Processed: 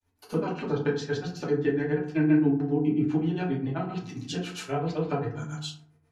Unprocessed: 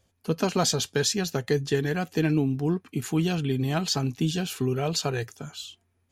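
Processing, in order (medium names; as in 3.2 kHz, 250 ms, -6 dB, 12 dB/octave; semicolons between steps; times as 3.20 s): granulator 134 ms, grains 7.5 per s, spray 100 ms, pitch spread up and down by 0 st; low-pass that closes with the level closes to 2.1 kHz, closed at -28 dBFS; peaking EQ 82 Hz -5.5 dB 2.7 oct; de-hum 49.78 Hz, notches 8; compression 2:1, threshold -37 dBFS, peak gain reduction 8.5 dB; FDN reverb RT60 0.55 s, low-frequency decay 1.4×, high-frequency decay 0.45×, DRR -4.5 dB; trim +2 dB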